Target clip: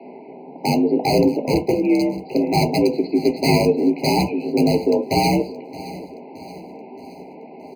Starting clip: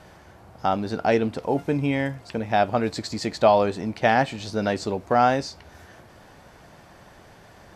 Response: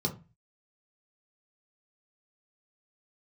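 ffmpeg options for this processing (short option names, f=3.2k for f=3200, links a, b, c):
-filter_complex "[0:a]asplit=2[a][b];[b]acompressor=threshold=-31dB:ratio=5,volume=0dB[c];[a][c]amix=inputs=2:normalize=0,asoftclip=type=tanh:threshold=-14dB,highpass=f=190:t=q:w=0.5412,highpass=f=190:t=q:w=1.307,lowpass=f=3.1k:t=q:w=0.5176,lowpass=f=3.1k:t=q:w=0.7071,lowpass=f=3.1k:t=q:w=1.932,afreqshift=56,aeval=exprs='(mod(5.62*val(0)+1,2)-1)/5.62':c=same,aecho=1:1:622|1244|1866|2488|3110:0.133|0.0707|0.0375|0.0199|0.0105[d];[1:a]atrim=start_sample=2205,atrim=end_sample=4410[e];[d][e]afir=irnorm=-1:irlink=0,afftfilt=real='re*eq(mod(floor(b*sr/1024/1000),2),0)':imag='im*eq(mod(floor(b*sr/1024/1000),2),0)':win_size=1024:overlap=0.75,volume=-3dB"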